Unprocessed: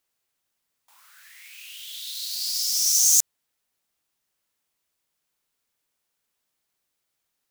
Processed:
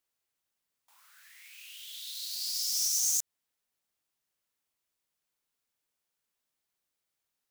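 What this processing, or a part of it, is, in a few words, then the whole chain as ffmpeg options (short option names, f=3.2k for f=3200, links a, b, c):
limiter into clipper: -af "alimiter=limit=-11.5dB:level=0:latency=1:release=123,asoftclip=type=hard:threshold=-14dB,volume=-6.5dB"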